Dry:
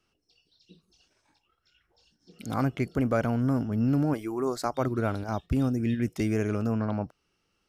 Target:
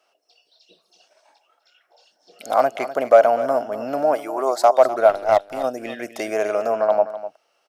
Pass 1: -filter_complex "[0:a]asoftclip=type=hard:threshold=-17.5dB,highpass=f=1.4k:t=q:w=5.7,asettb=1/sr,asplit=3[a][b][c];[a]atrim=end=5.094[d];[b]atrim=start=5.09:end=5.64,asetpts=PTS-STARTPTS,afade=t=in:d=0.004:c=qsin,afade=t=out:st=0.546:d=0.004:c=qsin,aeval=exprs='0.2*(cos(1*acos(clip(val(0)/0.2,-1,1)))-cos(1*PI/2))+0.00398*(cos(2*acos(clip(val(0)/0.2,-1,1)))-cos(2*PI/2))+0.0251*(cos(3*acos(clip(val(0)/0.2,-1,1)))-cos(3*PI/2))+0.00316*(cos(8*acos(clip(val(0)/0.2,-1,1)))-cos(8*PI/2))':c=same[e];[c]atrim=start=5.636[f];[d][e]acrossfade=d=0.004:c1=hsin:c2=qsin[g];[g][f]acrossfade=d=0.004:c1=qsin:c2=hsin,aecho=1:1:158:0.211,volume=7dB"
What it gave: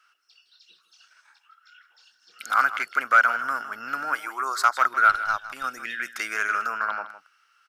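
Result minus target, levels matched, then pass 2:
500 Hz band -20.0 dB; echo 93 ms early
-filter_complex "[0:a]asoftclip=type=hard:threshold=-17.5dB,highpass=f=640:t=q:w=5.7,asettb=1/sr,asplit=3[a][b][c];[a]atrim=end=5.094[d];[b]atrim=start=5.09:end=5.64,asetpts=PTS-STARTPTS,afade=t=in:d=0.004:c=qsin,afade=t=out:st=0.546:d=0.004:c=qsin,aeval=exprs='0.2*(cos(1*acos(clip(val(0)/0.2,-1,1)))-cos(1*PI/2))+0.00398*(cos(2*acos(clip(val(0)/0.2,-1,1)))-cos(2*PI/2))+0.0251*(cos(3*acos(clip(val(0)/0.2,-1,1)))-cos(3*PI/2))+0.00316*(cos(8*acos(clip(val(0)/0.2,-1,1)))-cos(8*PI/2))':c=same[e];[c]atrim=start=5.636[f];[d][e]acrossfade=d=0.004:c1=hsin:c2=qsin[g];[g][f]acrossfade=d=0.004:c1=qsin:c2=hsin,aecho=1:1:251:0.211,volume=7dB"

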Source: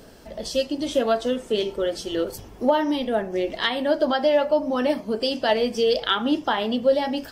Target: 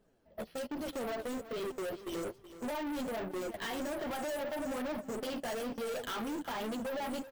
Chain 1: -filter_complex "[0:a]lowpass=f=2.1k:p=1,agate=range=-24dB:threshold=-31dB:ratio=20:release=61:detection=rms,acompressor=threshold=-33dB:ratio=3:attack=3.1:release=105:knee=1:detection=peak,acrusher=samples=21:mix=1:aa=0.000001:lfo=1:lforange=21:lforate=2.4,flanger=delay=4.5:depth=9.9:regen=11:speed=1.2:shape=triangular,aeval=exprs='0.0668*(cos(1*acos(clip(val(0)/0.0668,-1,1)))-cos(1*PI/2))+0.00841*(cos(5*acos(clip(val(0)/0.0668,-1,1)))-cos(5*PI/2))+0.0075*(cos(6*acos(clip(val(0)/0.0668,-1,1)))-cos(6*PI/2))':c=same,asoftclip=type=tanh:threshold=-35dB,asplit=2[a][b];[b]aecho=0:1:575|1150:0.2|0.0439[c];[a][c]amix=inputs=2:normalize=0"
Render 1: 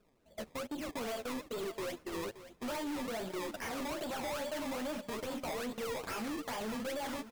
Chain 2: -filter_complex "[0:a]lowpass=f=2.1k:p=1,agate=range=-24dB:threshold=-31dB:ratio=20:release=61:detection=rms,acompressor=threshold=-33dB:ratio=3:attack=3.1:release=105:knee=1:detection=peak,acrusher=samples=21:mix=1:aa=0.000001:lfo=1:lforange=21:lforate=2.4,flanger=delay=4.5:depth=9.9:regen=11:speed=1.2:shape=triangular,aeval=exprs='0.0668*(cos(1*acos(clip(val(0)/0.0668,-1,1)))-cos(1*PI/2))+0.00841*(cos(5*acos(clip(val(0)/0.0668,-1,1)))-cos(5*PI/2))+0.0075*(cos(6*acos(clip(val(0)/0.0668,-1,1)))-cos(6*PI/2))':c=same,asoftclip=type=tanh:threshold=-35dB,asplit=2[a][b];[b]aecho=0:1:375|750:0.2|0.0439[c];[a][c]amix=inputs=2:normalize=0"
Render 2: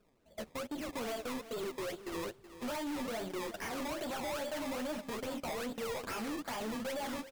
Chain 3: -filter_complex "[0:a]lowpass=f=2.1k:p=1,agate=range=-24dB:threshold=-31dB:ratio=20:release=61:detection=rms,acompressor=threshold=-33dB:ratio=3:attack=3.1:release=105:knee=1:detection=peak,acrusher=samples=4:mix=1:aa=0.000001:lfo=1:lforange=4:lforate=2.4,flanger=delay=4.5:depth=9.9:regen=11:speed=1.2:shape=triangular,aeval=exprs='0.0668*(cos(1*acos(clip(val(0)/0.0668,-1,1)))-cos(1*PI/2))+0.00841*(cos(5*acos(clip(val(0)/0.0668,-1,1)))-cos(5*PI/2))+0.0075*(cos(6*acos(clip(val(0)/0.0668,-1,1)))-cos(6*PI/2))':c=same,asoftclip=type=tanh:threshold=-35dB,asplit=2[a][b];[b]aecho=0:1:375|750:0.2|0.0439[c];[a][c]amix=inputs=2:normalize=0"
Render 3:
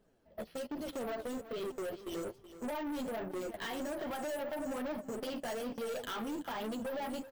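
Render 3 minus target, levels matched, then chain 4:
compressor: peak gain reduction +5 dB
-filter_complex "[0:a]lowpass=f=2.1k:p=1,agate=range=-24dB:threshold=-31dB:ratio=20:release=61:detection=rms,acompressor=threshold=-25.5dB:ratio=3:attack=3.1:release=105:knee=1:detection=peak,acrusher=samples=4:mix=1:aa=0.000001:lfo=1:lforange=4:lforate=2.4,flanger=delay=4.5:depth=9.9:regen=11:speed=1.2:shape=triangular,aeval=exprs='0.0668*(cos(1*acos(clip(val(0)/0.0668,-1,1)))-cos(1*PI/2))+0.00841*(cos(5*acos(clip(val(0)/0.0668,-1,1)))-cos(5*PI/2))+0.0075*(cos(6*acos(clip(val(0)/0.0668,-1,1)))-cos(6*PI/2))':c=same,asoftclip=type=tanh:threshold=-35dB,asplit=2[a][b];[b]aecho=0:1:375|750:0.2|0.0439[c];[a][c]amix=inputs=2:normalize=0"

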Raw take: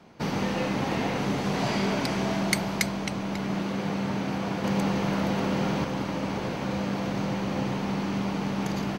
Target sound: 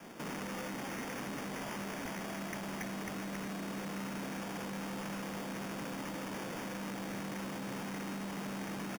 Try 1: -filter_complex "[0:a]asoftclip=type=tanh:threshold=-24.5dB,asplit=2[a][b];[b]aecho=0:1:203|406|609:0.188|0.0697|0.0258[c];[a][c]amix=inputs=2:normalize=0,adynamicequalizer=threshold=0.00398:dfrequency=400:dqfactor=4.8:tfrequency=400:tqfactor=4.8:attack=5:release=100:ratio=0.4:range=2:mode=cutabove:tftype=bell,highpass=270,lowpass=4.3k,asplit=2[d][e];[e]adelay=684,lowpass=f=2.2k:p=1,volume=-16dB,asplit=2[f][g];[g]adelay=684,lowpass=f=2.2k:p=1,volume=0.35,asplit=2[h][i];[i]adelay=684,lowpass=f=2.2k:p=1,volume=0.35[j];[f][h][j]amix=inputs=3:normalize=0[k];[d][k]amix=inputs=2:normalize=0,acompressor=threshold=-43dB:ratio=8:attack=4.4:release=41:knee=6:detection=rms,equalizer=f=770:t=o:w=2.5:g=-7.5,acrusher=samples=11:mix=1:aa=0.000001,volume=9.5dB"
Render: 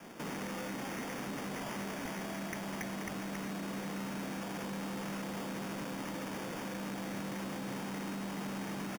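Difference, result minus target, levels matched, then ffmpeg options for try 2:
soft clip: distortion -6 dB
-filter_complex "[0:a]asoftclip=type=tanh:threshold=-32.5dB,asplit=2[a][b];[b]aecho=0:1:203|406|609:0.188|0.0697|0.0258[c];[a][c]amix=inputs=2:normalize=0,adynamicequalizer=threshold=0.00398:dfrequency=400:dqfactor=4.8:tfrequency=400:tqfactor=4.8:attack=5:release=100:ratio=0.4:range=2:mode=cutabove:tftype=bell,highpass=270,lowpass=4.3k,asplit=2[d][e];[e]adelay=684,lowpass=f=2.2k:p=1,volume=-16dB,asplit=2[f][g];[g]adelay=684,lowpass=f=2.2k:p=1,volume=0.35,asplit=2[h][i];[i]adelay=684,lowpass=f=2.2k:p=1,volume=0.35[j];[f][h][j]amix=inputs=3:normalize=0[k];[d][k]amix=inputs=2:normalize=0,acompressor=threshold=-43dB:ratio=8:attack=4.4:release=41:knee=6:detection=rms,equalizer=f=770:t=o:w=2.5:g=-7.5,acrusher=samples=11:mix=1:aa=0.000001,volume=9.5dB"

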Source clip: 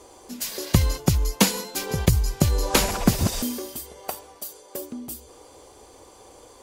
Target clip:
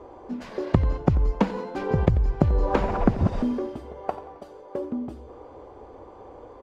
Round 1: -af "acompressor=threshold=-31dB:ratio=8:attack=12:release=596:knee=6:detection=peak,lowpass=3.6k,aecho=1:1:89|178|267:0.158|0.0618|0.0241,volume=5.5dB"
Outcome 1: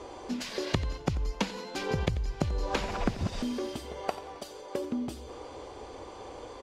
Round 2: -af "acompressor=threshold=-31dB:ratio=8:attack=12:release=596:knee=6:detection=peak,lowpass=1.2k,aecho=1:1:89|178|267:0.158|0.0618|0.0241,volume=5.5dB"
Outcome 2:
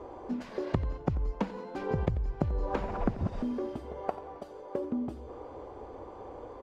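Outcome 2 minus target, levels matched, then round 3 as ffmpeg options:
compressor: peak gain reduction +10 dB
-af "acompressor=threshold=-19.5dB:ratio=8:attack=12:release=596:knee=6:detection=peak,lowpass=1.2k,aecho=1:1:89|178|267:0.158|0.0618|0.0241,volume=5.5dB"

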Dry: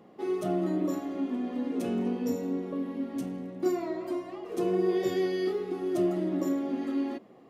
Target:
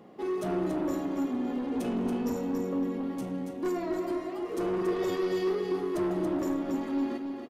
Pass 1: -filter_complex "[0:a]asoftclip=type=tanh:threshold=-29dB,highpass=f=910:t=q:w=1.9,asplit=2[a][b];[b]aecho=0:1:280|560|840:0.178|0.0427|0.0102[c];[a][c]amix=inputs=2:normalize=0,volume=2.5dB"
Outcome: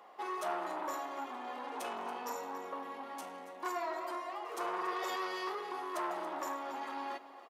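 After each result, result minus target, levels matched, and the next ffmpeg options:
1000 Hz band +11.5 dB; echo-to-direct -9 dB
-filter_complex "[0:a]asoftclip=type=tanh:threshold=-29dB,asplit=2[a][b];[b]aecho=0:1:280|560|840:0.178|0.0427|0.0102[c];[a][c]amix=inputs=2:normalize=0,volume=2.5dB"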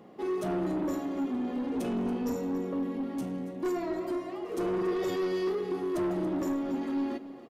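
echo-to-direct -9 dB
-filter_complex "[0:a]asoftclip=type=tanh:threshold=-29dB,asplit=2[a][b];[b]aecho=0:1:280|560|840:0.501|0.12|0.0289[c];[a][c]amix=inputs=2:normalize=0,volume=2.5dB"

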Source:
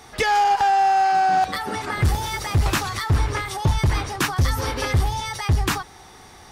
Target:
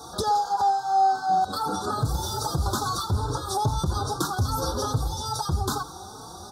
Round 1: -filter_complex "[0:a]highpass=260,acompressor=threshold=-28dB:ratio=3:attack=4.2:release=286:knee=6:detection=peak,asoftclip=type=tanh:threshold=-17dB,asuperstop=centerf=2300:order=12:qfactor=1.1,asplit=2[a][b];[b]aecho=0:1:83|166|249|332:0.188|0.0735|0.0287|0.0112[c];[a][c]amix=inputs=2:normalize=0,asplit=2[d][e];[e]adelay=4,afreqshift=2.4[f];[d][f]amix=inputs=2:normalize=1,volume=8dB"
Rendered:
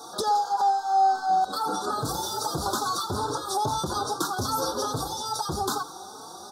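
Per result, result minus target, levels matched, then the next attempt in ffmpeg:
125 Hz band -9.0 dB; soft clip: distortion +12 dB
-filter_complex "[0:a]highpass=66,acompressor=threshold=-28dB:ratio=3:attack=4.2:release=286:knee=6:detection=peak,asoftclip=type=tanh:threshold=-17dB,asuperstop=centerf=2300:order=12:qfactor=1.1,asplit=2[a][b];[b]aecho=0:1:83|166|249|332:0.188|0.0735|0.0287|0.0112[c];[a][c]amix=inputs=2:normalize=0,asplit=2[d][e];[e]adelay=4,afreqshift=2.4[f];[d][f]amix=inputs=2:normalize=1,volume=8dB"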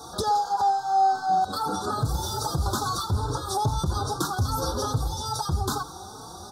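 soft clip: distortion +13 dB
-filter_complex "[0:a]highpass=66,acompressor=threshold=-28dB:ratio=3:attack=4.2:release=286:knee=6:detection=peak,asoftclip=type=tanh:threshold=-10dB,asuperstop=centerf=2300:order=12:qfactor=1.1,asplit=2[a][b];[b]aecho=0:1:83|166|249|332:0.188|0.0735|0.0287|0.0112[c];[a][c]amix=inputs=2:normalize=0,asplit=2[d][e];[e]adelay=4,afreqshift=2.4[f];[d][f]amix=inputs=2:normalize=1,volume=8dB"

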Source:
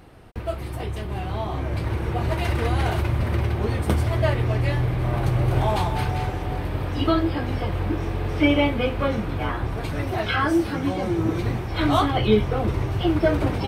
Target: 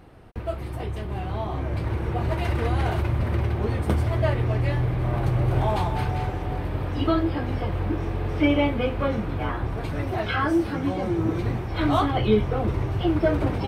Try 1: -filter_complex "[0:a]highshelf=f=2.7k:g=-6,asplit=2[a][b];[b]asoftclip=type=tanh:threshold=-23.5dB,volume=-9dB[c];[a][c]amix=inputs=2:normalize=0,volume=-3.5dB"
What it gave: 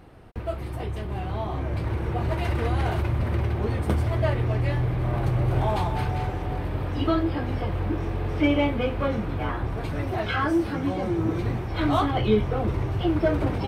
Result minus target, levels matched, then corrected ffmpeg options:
soft clip: distortion +11 dB
-filter_complex "[0:a]highshelf=f=2.7k:g=-6,asplit=2[a][b];[b]asoftclip=type=tanh:threshold=-13dB,volume=-9dB[c];[a][c]amix=inputs=2:normalize=0,volume=-3.5dB"

